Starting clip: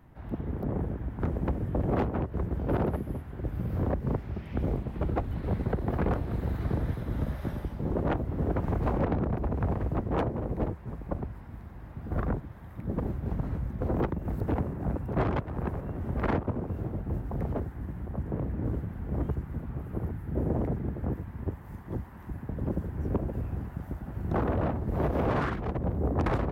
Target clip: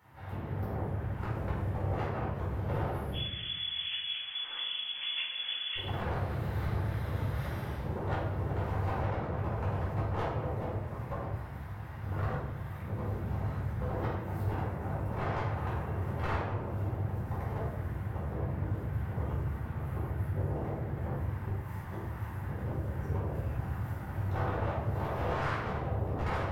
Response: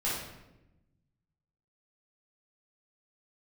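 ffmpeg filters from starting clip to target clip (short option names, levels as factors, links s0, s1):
-filter_complex "[0:a]highpass=f=83:w=0.5412,highpass=f=83:w=1.3066,acompressor=threshold=0.02:ratio=3,equalizer=f=240:w=0.62:g=-15,aeval=exprs='clip(val(0),-1,0.0119)':c=same,asettb=1/sr,asplit=3[s0][s1][s2];[s0]atrim=end=3.124[s3];[s1]atrim=start=3.12:end=5.76,asetpts=PTS-STARTPTS,afade=t=in:d=0.004:c=qsin,afade=t=out:st=2.636:d=0.004:c=qsin,lowpass=f=3000:t=q:w=0.5098,lowpass=f=3000:t=q:w=0.6013,lowpass=f=3000:t=q:w=0.9,lowpass=f=3000:t=q:w=2.563,afreqshift=-3500[s4];[s2]atrim=start=5.756[s5];[s3][s4]acrossfade=d=0.004:c1=hsin:c2=qsin[s6];[s6][s5]acrossfade=d=0.004:c1=qsin:c2=hsin[s7];[1:a]atrim=start_sample=2205[s8];[s7][s8]afir=irnorm=-1:irlink=0,volume=1.19"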